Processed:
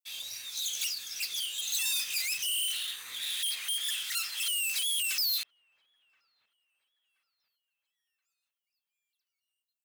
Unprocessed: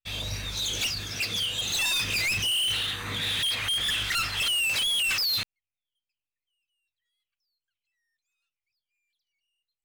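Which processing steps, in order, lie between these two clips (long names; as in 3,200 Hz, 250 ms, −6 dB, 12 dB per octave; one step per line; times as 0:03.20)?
first difference
delay with a low-pass on its return 1,026 ms, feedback 38%, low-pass 1,100 Hz, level −21 dB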